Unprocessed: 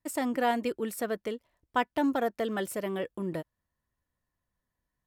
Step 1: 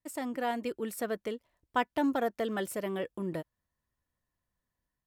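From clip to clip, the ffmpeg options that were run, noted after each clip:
-af "dynaudnorm=f=490:g=3:m=1.68,volume=0.501"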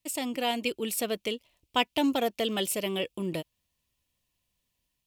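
-af "highshelf=f=2100:t=q:w=3:g=7.5,volume=1.41"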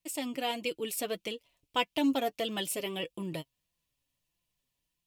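-af "flanger=delay=5.8:depth=1.6:regen=33:speed=1.6:shape=sinusoidal"

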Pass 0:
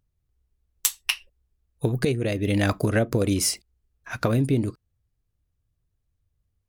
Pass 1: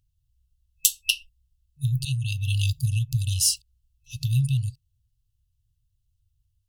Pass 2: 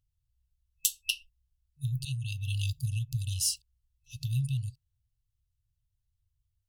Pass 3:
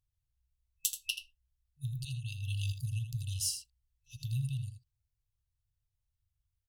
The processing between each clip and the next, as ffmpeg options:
-af "afftfilt=real='re*(1-between(b*sr/4096,150,2600))':imag='im*(1-between(b*sr/4096,150,2600))':win_size=4096:overlap=0.75,volume=1.41"
-af "asoftclip=type=hard:threshold=0.668,volume=0.422"
-af "aecho=1:1:81:0.335,volume=0.562"

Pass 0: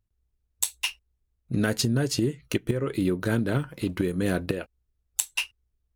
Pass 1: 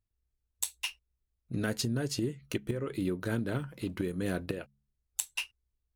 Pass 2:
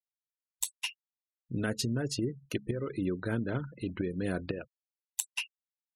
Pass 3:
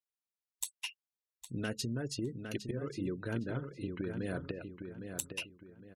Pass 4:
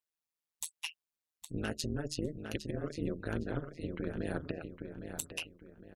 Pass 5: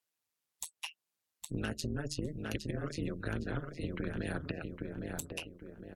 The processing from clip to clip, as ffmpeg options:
-af "bandreject=f=69.29:t=h:w=4,bandreject=f=138.58:t=h:w=4,bandreject=f=207.87:t=h:w=4,volume=0.447"
-af "afftfilt=real='re*gte(hypot(re,im),0.00708)':imag='im*gte(hypot(re,im),0.00708)':win_size=1024:overlap=0.75"
-filter_complex "[0:a]asplit=2[s0][s1];[s1]adelay=810,lowpass=f=3800:p=1,volume=0.447,asplit=2[s2][s3];[s3]adelay=810,lowpass=f=3800:p=1,volume=0.33,asplit=2[s4][s5];[s5]adelay=810,lowpass=f=3800:p=1,volume=0.33,asplit=2[s6][s7];[s7]adelay=810,lowpass=f=3800:p=1,volume=0.33[s8];[s0][s2][s4][s6][s8]amix=inputs=5:normalize=0,volume=0.562"
-af "tremolo=f=160:d=0.974,volume=1.68"
-filter_complex "[0:a]acrossover=split=230|980[s0][s1][s2];[s0]acompressor=threshold=0.00891:ratio=4[s3];[s1]acompressor=threshold=0.00447:ratio=4[s4];[s2]acompressor=threshold=0.00562:ratio=4[s5];[s3][s4][s5]amix=inputs=3:normalize=0,volume=1.88" -ar 44100 -c:a libvorbis -b:a 96k

